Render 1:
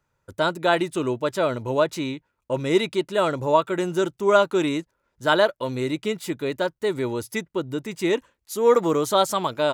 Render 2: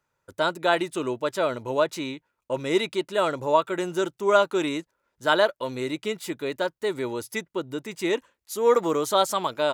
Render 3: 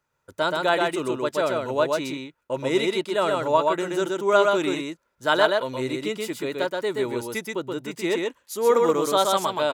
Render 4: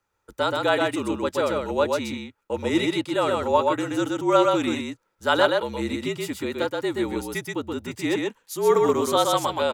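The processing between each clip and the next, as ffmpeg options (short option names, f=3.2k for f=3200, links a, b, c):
-af "lowshelf=f=190:g=-10,volume=-1dB"
-af "aecho=1:1:126:0.708"
-af "afreqshift=-46"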